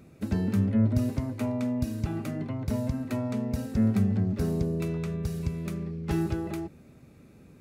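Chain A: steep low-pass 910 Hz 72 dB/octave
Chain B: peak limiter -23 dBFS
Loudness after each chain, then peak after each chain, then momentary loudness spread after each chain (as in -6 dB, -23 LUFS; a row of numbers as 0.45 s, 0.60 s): -29.5 LUFS, -32.0 LUFS; -14.0 dBFS, -23.0 dBFS; 9 LU, 4 LU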